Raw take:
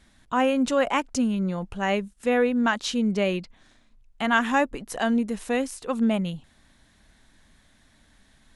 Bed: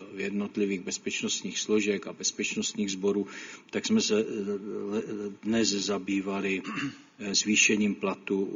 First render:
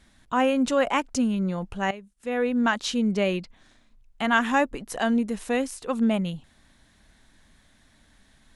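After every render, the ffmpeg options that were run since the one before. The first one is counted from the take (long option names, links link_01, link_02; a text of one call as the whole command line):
ffmpeg -i in.wav -filter_complex "[0:a]asplit=2[link_01][link_02];[link_01]atrim=end=1.91,asetpts=PTS-STARTPTS,afade=type=out:start_time=1.906:duration=0.004:curve=hsin:silence=0.16788[link_03];[link_02]atrim=start=1.91,asetpts=PTS-STARTPTS,afade=type=in:duration=0.65:curve=qua:silence=0.16788[link_04];[link_03][link_04]concat=n=2:v=0:a=1" out.wav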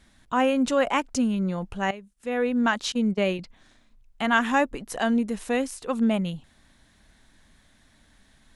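ffmpeg -i in.wav -filter_complex "[0:a]asettb=1/sr,asplit=3[link_01][link_02][link_03];[link_01]atrim=end=2.924[link_04];[link_02]atrim=start=2.92:end=3.39,asetpts=PTS-STARTPTS,afade=type=in:duration=0.004:curve=qsin,afade=type=out:start_time=0.466:duration=0.004:curve=qsin,agate=range=-23dB:threshold=-27dB:ratio=16:release=100:detection=peak[link_05];[link_03]atrim=start=3.386[link_06];[link_04][link_05]acrossfade=duration=0.004:curve1=hsin:curve2=qsin[link_07];[link_07][link_06]acrossfade=duration=0.004:curve1=qsin:curve2=hsin" out.wav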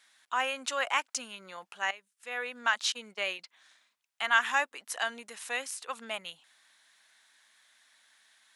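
ffmpeg -i in.wav -af "highpass=1200" out.wav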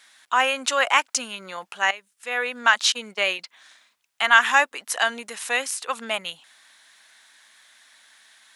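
ffmpeg -i in.wav -af "volume=10dB,alimiter=limit=-2dB:level=0:latency=1" out.wav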